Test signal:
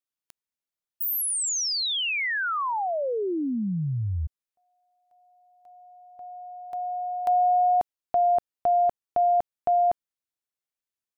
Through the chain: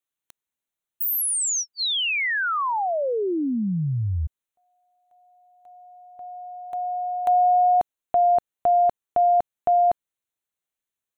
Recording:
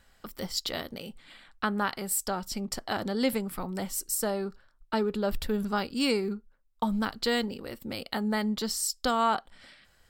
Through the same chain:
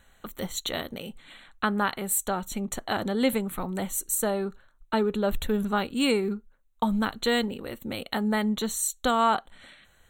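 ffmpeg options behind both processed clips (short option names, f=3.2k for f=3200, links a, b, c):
-af "asuperstop=centerf=5000:order=12:qfactor=3.3,volume=3dB"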